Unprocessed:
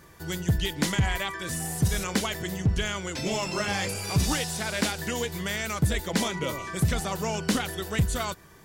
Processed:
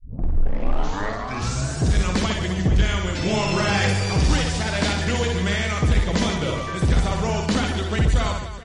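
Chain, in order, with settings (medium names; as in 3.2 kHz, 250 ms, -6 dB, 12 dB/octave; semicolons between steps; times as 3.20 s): tape start-up on the opening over 1.95 s; low-pass 5.7 kHz 12 dB/octave; bass shelf 99 Hz +11.5 dB; level rider gain up to 11.5 dB; Chebyshev shaper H 8 -33 dB, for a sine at -11.5 dBFS; reverse bouncing-ball echo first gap 60 ms, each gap 1.4×, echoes 5; trim -4 dB; MP3 40 kbps 32 kHz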